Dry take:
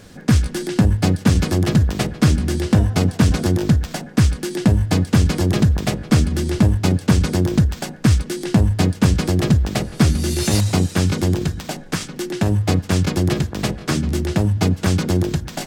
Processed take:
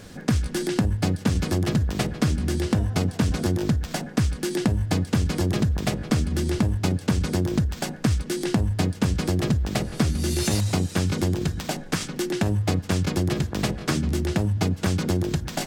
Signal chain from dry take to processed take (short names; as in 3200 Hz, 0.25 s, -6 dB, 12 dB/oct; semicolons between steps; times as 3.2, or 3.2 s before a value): compressor 3:1, threshold -21 dBFS, peak gain reduction 9.5 dB